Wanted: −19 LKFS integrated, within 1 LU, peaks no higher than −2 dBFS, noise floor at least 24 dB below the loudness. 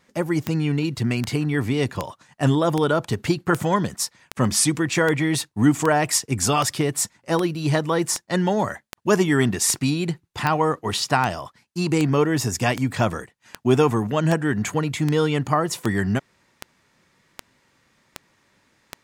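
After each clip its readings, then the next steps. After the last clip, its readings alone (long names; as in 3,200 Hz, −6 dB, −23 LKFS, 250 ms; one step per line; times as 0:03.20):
number of clicks 25; integrated loudness −22.0 LKFS; sample peak −4.0 dBFS; target loudness −19.0 LKFS
→ click removal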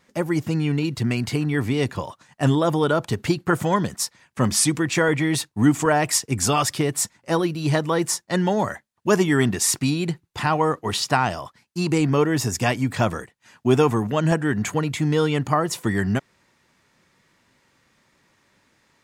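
number of clicks 0; integrated loudness −22.0 LKFS; sample peak −4.0 dBFS; target loudness −19.0 LKFS
→ level +3 dB
brickwall limiter −2 dBFS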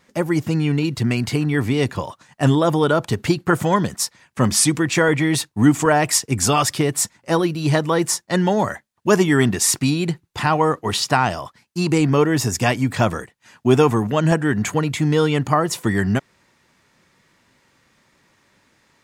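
integrated loudness −19.0 LKFS; sample peak −2.0 dBFS; background noise floor −62 dBFS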